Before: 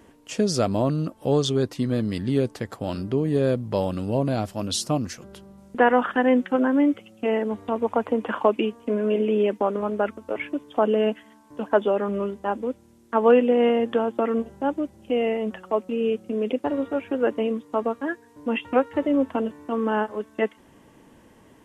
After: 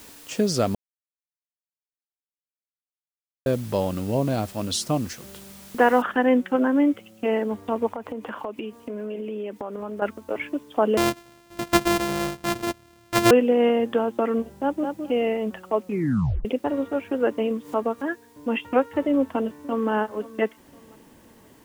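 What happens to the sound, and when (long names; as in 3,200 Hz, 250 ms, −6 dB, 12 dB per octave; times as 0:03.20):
0:00.75–0:03.46: silence
0:06.02: noise floor change −47 dB −62 dB
0:07.88–0:10.02: downward compressor 4 to 1, threshold −30 dBFS
0:10.97–0:13.31: samples sorted by size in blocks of 128 samples
0:14.57–0:14.99: delay throw 210 ms, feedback 15%, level −5.5 dB
0:15.86: tape stop 0.59 s
0:17.51–0:18.12: upward compression, threshold −29 dBFS
0:19.12–0:19.91: delay throw 520 ms, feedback 35%, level −18 dB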